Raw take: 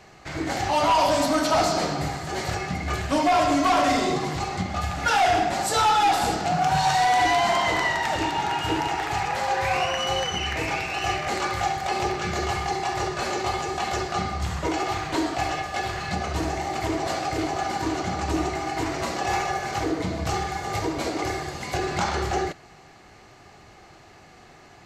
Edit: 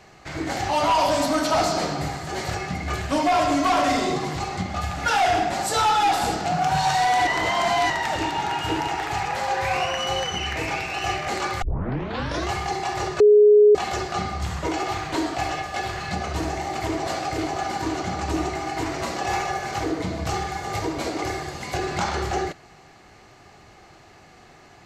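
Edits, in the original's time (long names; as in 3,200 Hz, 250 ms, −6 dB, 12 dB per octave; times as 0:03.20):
0:07.27–0:07.90: reverse
0:11.62: tape start 0.88 s
0:13.20–0:13.75: beep over 418 Hz −9.5 dBFS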